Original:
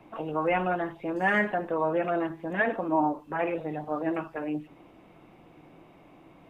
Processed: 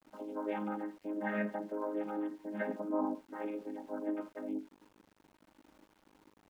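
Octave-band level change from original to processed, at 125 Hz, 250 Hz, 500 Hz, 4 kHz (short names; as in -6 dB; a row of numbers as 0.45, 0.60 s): under -10 dB, -6.0 dB, -10.0 dB, n/a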